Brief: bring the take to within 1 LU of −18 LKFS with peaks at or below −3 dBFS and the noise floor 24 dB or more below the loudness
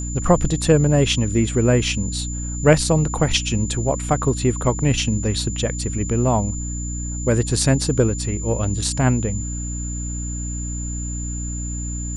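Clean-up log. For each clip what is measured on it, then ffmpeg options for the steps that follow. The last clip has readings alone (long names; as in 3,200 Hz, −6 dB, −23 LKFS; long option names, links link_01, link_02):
mains hum 60 Hz; hum harmonics up to 300 Hz; level of the hum −25 dBFS; interfering tone 7,100 Hz; level of the tone −31 dBFS; integrated loudness −21.0 LKFS; sample peak −1.5 dBFS; target loudness −18.0 LKFS
→ -af "bandreject=frequency=60:width_type=h:width=4,bandreject=frequency=120:width_type=h:width=4,bandreject=frequency=180:width_type=h:width=4,bandreject=frequency=240:width_type=h:width=4,bandreject=frequency=300:width_type=h:width=4"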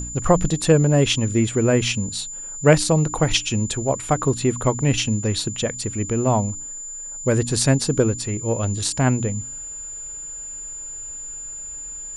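mains hum none found; interfering tone 7,100 Hz; level of the tone −31 dBFS
→ -af "bandreject=frequency=7100:width=30"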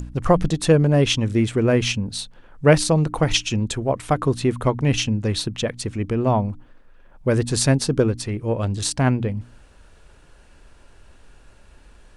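interfering tone none found; integrated loudness −21.0 LKFS; sample peak −2.0 dBFS; target loudness −18.0 LKFS
→ -af "volume=3dB,alimiter=limit=-3dB:level=0:latency=1"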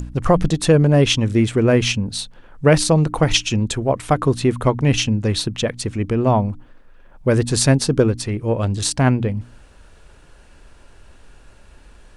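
integrated loudness −18.0 LKFS; sample peak −3.0 dBFS; background noise floor −47 dBFS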